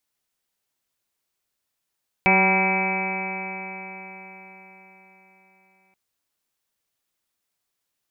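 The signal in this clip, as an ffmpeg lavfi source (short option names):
-f lavfi -i "aevalsrc='0.0794*pow(10,-3*t/4.56)*sin(2*PI*188.19*t)+0.0562*pow(10,-3*t/4.56)*sin(2*PI*377.5*t)+0.0447*pow(10,-3*t/4.56)*sin(2*PI*569.05*t)+0.0944*pow(10,-3*t/4.56)*sin(2*PI*763.94*t)+0.0631*pow(10,-3*t/4.56)*sin(2*PI*963.21*t)+0.015*pow(10,-3*t/4.56)*sin(2*PI*1167.9*t)+0.0211*pow(10,-3*t/4.56)*sin(2*PI*1378.98*t)+0.0178*pow(10,-3*t/4.56)*sin(2*PI*1597.36*t)+0.0158*pow(10,-3*t/4.56)*sin(2*PI*1823.91*t)+0.0398*pow(10,-3*t/4.56)*sin(2*PI*2059.44*t)+0.15*pow(10,-3*t/4.56)*sin(2*PI*2304.68*t)+0.0531*pow(10,-3*t/4.56)*sin(2*PI*2560.34*t)':d=3.68:s=44100"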